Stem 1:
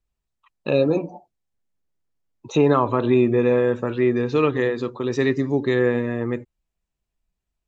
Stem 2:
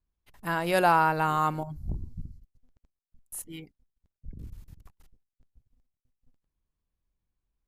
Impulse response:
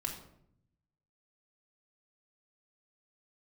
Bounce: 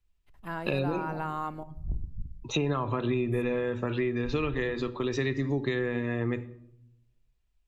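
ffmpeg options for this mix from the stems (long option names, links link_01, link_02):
-filter_complex "[0:a]equalizer=frequency=2800:width_type=o:width=2:gain=7.5,volume=-6dB,asplit=2[link_01][link_02];[link_02]volume=-10.5dB[link_03];[1:a]highshelf=frequency=3700:gain=-9.5,volume=-8.5dB,asplit=2[link_04][link_05];[link_05]volume=-12dB[link_06];[2:a]atrim=start_sample=2205[link_07];[link_03][link_06]amix=inputs=2:normalize=0[link_08];[link_08][link_07]afir=irnorm=-1:irlink=0[link_09];[link_01][link_04][link_09]amix=inputs=3:normalize=0,lowshelf=frequency=95:gain=10,acrossover=split=120[link_10][link_11];[link_11]acompressor=threshold=-26dB:ratio=10[link_12];[link_10][link_12]amix=inputs=2:normalize=0"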